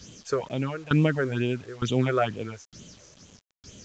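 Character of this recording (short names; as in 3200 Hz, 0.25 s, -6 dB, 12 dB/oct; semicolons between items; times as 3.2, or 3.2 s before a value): tremolo saw down 1.1 Hz, depth 90%; phasing stages 6, 2.2 Hz, lowest notch 200–1500 Hz; a quantiser's noise floor 10-bit, dither none; µ-law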